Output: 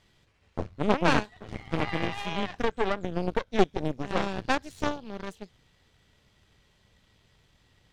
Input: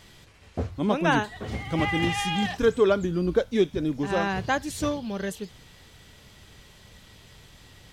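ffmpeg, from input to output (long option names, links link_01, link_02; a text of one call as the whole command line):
ffmpeg -i in.wav -filter_complex "[0:a]highshelf=frequency=8400:gain=-10.5,aeval=exprs='0.355*(cos(1*acos(clip(val(0)/0.355,-1,1)))-cos(1*PI/2))+0.126*(cos(4*acos(clip(val(0)/0.355,-1,1)))-cos(4*PI/2))+0.0355*(cos(7*acos(clip(val(0)/0.355,-1,1)))-cos(7*PI/2))':channel_layout=same,asettb=1/sr,asplit=3[link_01][link_02][link_03];[link_01]atrim=end=1.774[link_04];[link_02]atrim=start=1.77:end=3.59,asetpts=PTS-STARTPTS,afade=type=in:duration=0.004:curve=qsin,afade=type=out:start_time=1.816:duration=0.004:curve=qsin,acrossover=split=1400|3600[link_05][link_06][link_07];[link_05]acompressor=threshold=-21dB:ratio=4[link_08];[link_06]acompressor=threshold=-33dB:ratio=4[link_09];[link_07]acompressor=threshold=-49dB:ratio=4[link_10];[link_08][link_09][link_10]amix=inputs=3:normalize=0[link_11];[link_03]atrim=start=3.586[link_12];[link_04][link_11]acrossfade=duration=0.004:curve1=hsin:curve2=qsin[link_13];[link_13][link_12]acrossfade=duration=0.004:curve1=qsin:curve2=hsin,volume=-2dB" out.wav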